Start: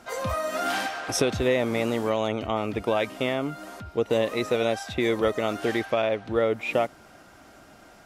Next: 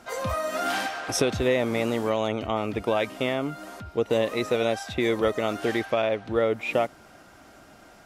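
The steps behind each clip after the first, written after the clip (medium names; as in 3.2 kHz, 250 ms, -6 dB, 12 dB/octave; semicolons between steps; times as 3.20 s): no audible change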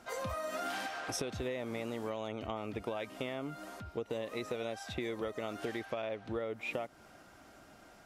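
compression, threshold -28 dBFS, peak gain reduction 10 dB; trim -6.5 dB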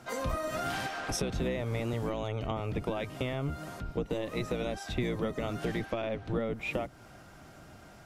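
octave divider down 1 oct, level +4 dB; trim +3.5 dB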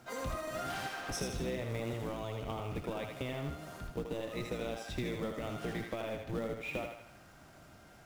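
thinning echo 79 ms, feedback 53%, high-pass 460 Hz, level -4 dB; in parallel at -7 dB: companded quantiser 4-bit; on the sum: trim -9 dB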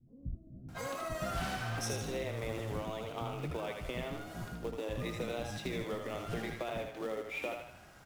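vibrato 0.88 Hz 66 cents; bands offset in time lows, highs 680 ms, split 250 Hz; trim +1 dB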